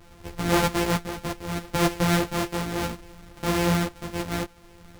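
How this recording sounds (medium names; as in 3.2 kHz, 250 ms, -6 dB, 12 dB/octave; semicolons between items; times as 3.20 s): a buzz of ramps at a fixed pitch in blocks of 256 samples; tremolo triangle 0.66 Hz, depth 60%; a shimmering, thickened sound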